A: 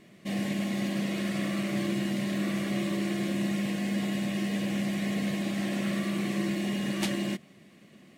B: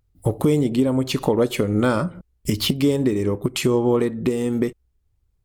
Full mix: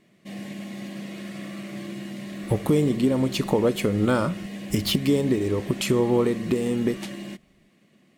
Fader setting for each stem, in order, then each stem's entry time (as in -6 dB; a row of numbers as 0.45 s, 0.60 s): -5.5 dB, -2.5 dB; 0.00 s, 2.25 s